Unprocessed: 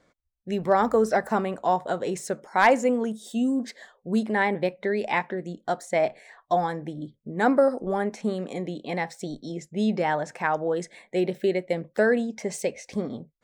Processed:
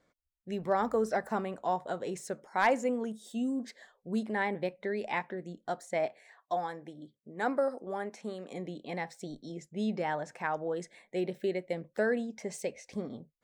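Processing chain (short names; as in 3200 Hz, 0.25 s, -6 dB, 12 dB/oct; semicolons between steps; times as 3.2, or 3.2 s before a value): 6.06–8.52 HPF 360 Hz 6 dB/oct; gain -8 dB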